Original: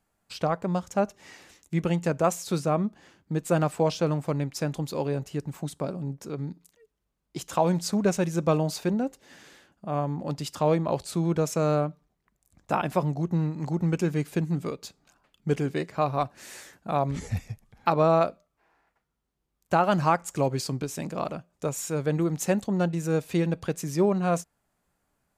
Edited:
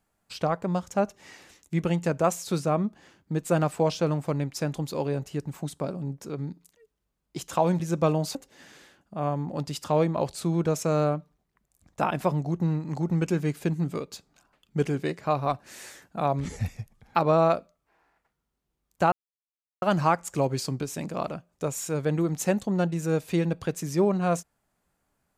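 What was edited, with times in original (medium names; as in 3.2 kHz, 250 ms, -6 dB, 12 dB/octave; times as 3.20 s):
7.80–8.25 s: delete
8.80–9.06 s: delete
19.83 s: insert silence 0.70 s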